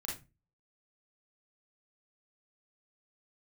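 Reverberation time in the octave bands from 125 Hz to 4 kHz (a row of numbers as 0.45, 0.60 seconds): 0.45, 0.40, 0.30, 0.25, 0.25, 0.20 seconds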